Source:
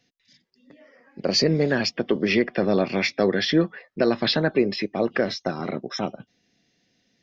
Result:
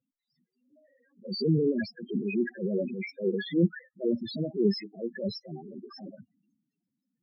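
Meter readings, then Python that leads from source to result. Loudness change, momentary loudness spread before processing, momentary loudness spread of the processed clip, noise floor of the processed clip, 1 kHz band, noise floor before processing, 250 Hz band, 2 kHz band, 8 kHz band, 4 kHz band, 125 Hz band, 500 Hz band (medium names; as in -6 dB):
-7.0 dB, 9 LU, 17 LU, under -85 dBFS, under -20 dB, -70 dBFS, -5.0 dB, -14.0 dB, no reading, -14.5 dB, -4.0 dB, -8.0 dB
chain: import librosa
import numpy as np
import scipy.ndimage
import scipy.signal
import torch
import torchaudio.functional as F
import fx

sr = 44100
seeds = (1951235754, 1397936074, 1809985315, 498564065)

y = fx.transient(x, sr, attack_db=-10, sustain_db=10)
y = fx.spec_topn(y, sr, count=4)
y = fx.upward_expand(y, sr, threshold_db=-37.0, expansion=1.5)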